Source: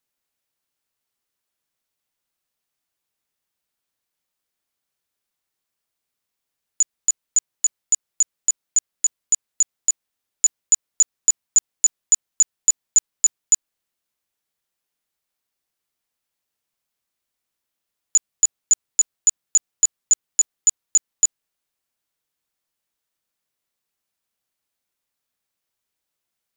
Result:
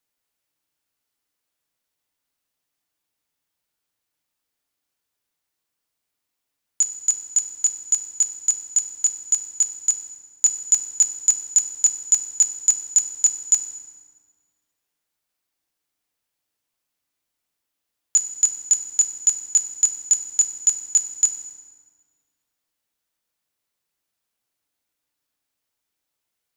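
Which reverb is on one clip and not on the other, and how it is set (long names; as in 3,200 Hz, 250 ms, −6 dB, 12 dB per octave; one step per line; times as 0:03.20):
feedback delay network reverb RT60 1.7 s, low-frequency decay 1.2×, high-frequency decay 0.7×, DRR 6 dB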